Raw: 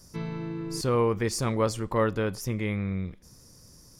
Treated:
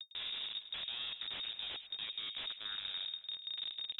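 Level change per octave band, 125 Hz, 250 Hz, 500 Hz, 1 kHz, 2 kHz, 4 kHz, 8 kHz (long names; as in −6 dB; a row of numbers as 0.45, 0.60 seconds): below −35 dB, −37.0 dB, −35.5 dB, −23.0 dB, −10.0 dB, +6.5 dB, below −40 dB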